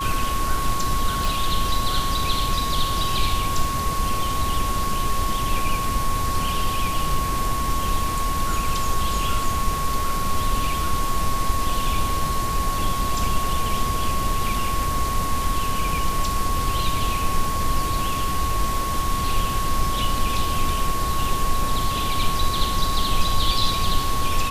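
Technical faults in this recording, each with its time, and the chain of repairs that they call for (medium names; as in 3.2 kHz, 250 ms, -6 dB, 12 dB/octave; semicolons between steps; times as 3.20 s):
whine 1.1 kHz -25 dBFS
1.25 s: pop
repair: de-click; band-stop 1.1 kHz, Q 30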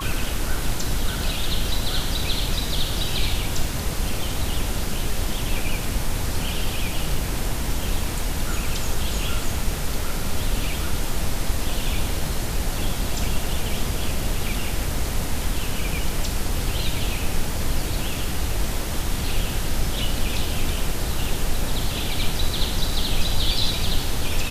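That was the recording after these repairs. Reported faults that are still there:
nothing left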